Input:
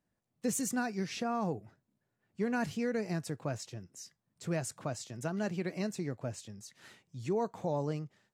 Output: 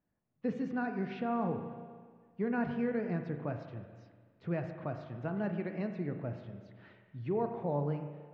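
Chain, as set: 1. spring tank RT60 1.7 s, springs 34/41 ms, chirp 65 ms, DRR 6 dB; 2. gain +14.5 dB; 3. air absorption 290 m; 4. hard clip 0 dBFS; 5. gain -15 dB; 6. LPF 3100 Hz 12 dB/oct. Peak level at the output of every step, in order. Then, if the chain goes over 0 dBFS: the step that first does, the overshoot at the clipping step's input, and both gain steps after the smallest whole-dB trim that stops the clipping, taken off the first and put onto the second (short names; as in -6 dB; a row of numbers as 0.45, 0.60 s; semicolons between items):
-20.0, -5.5, -6.0, -6.0, -21.0, -21.0 dBFS; no overload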